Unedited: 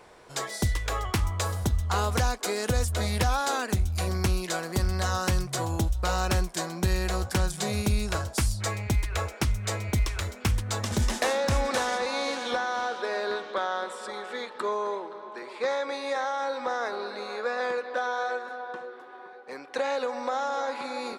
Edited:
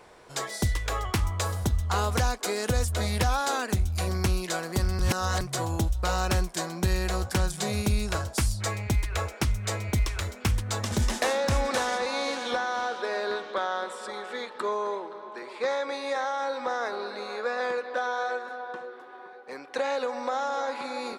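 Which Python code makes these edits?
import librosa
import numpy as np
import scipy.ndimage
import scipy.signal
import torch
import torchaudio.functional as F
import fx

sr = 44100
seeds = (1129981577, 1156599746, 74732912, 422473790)

y = fx.edit(x, sr, fx.reverse_span(start_s=4.99, length_s=0.42), tone=tone)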